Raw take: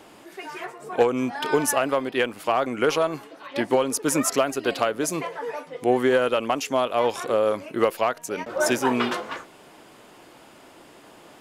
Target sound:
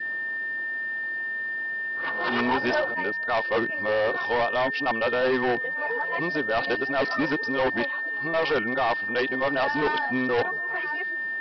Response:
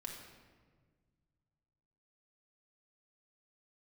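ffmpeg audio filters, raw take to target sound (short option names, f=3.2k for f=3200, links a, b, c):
-af "areverse,aeval=exprs='val(0)+0.0501*sin(2*PI*1800*n/s)':c=same,adynamicequalizer=threshold=0.0126:dfrequency=880:dqfactor=2.6:tfrequency=880:tqfactor=2.6:attack=5:release=100:ratio=0.375:range=2.5:mode=boostabove:tftype=bell,aresample=11025,asoftclip=type=hard:threshold=-18dB,aresample=44100,volume=-1.5dB"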